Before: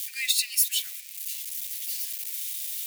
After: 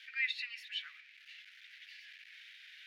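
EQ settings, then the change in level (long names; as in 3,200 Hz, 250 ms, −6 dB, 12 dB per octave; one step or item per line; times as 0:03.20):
resonant band-pass 1,500 Hz, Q 2
high-frequency loss of the air 320 metres
+7.5 dB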